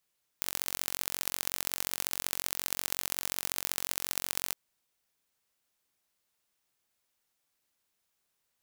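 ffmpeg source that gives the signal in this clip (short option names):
-f lavfi -i "aevalsrc='0.75*eq(mod(n,969),0)*(0.5+0.5*eq(mod(n,2907),0))':d=4.12:s=44100"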